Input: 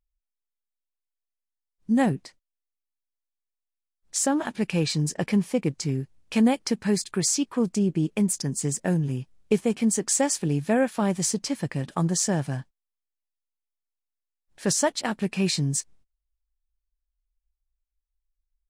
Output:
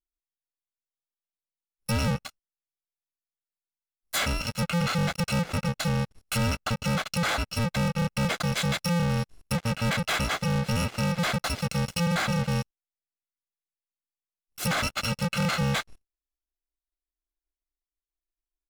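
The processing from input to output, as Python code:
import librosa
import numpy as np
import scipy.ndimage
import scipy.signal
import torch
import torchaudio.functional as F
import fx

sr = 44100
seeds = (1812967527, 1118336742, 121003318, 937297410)

y = fx.bit_reversed(x, sr, seeds[0], block=128)
y = fx.env_lowpass_down(y, sr, base_hz=2400.0, full_db=-21.5)
y = fx.leveller(y, sr, passes=5)
y = F.gain(torch.from_numpy(y), -5.0).numpy()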